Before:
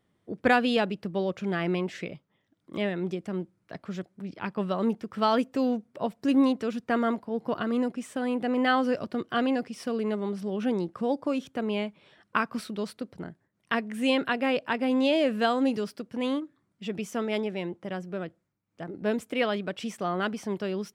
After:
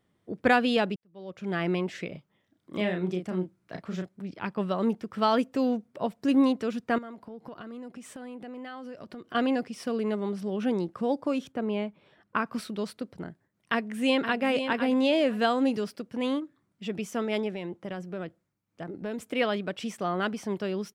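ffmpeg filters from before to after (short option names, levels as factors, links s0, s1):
-filter_complex "[0:a]asettb=1/sr,asplit=3[s0][s1][s2];[s0]atrim=end=2.124[s3];[s1]atrim=start=2.12:end=4.09,asetpts=PTS-STARTPTS,afade=t=in:d=0.004:c=qsin,afade=t=out:st=1.966:d=0.004:c=qsin,asplit=2[s4][s5];[s5]adelay=33,volume=0.562[s6];[s4][s6]amix=inputs=2:normalize=0,atrim=end_sample=86877[s7];[s2]atrim=start=4.086[s8];[s3][s7]acrossfade=d=0.004:c1=hsin:c2=qsin[s9];[s9][s8]acrossfade=d=0.004:c1=qsin:c2=hsin,asettb=1/sr,asplit=3[s10][s11][s12];[s10]atrim=end=6.984[s13];[s11]atrim=start=6.98:end=9.35,asetpts=PTS-STARTPTS,afade=t=in:d=0.004:c=qsin,afade=t=out:st=2.366:d=0.004:c=qsin,acompressor=threshold=0.0112:ratio=6:attack=3.2:release=140:knee=1:detection=peak[s14];[s12]atrim=start=9.346[s15];[s13][s14]acrossfade=d=0.004:c1=hsin:c2=qsin[s16];[s16][s15]acrossfade=d=0.004:c1=qsin:c2=hsin,asettb=1/sr,asplit=3[s17][s18][s19];[s17]atrim=end=11.524[s20];[s18]atrim=start=11.52:end=12.46,asetpts=PTS-STARTPTS,afade=t=in:d=0.004:c=qsin,afade=t=out:st=0.936:d=0.004:c=qsin,highshelf=f=2200:g=-9[s21];[s19]atrim=start=12.456[s22];[s20][s21]acrossfade=d=0.004:c1=hsin:c2=qsin[s23];[s23][s22]acrossfade=d=0.004:c1=qsin:c2=hsin,asplit=2[s24][s25];[s25]afade=t=in:st=13.72:d=0.01,afade=t=out:st=14.42:d=0.01,aecho=0:1:510|1020|1530:0.398107|0.0796214|0.0159243[s26];[s24][s26]amix=inputs=2:normalize=0,asettb=1/sr,asplit=3[s27][s28][s29];[s27]atrim=end=17.504[s30];[s28]atrim=start=17.5:end=19.3,asetpts=PTS-STARTPTS,afade=t=in:d=0.004:c=qsin,afade=t=out:st=1.796:d=0.004:c=qsin,acompressor=threshold=0.0316:ratio=6:attack=3.2:release=140:knee=1:detection=peak[s31];[s29]atrim=start=19.296[s32];[s30][s31]acrossfade=d=0.004:c1=hsin:c2=qsin[s33];[s33][s32]acrossfade=d=0.004:c1=qsin:c2=hsin,asplit=2[s34][s35];[s34]atrim=end=0.96,asetpts=PTS-STARTPTS,afade=t=out:st=0.956:d=0.004:c=hsin[s36];[s35]atrim=start=0.96,asetpts=PTS-STARTPTS,afade=t=in:d=0.61:c=qua[s37];[s36][s37]concat=n=2:v=0:a=1"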